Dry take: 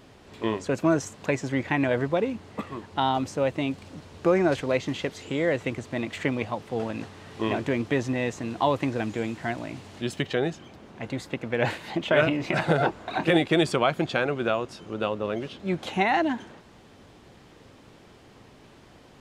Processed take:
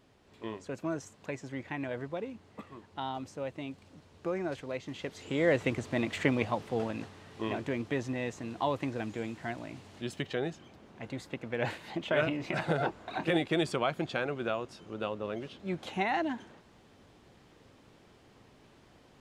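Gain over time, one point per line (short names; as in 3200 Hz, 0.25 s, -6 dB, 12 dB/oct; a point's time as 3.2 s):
4.84 s -12.5 dB
5.51 s -1 dB
6.57 s -1 dB
7.29 s -7.5 dB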